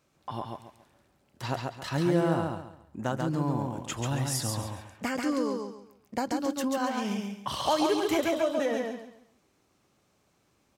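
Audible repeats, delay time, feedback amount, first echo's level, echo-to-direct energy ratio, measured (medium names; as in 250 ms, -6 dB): 3, 138 ms, 29%, -3.5 dB, -3.0 dB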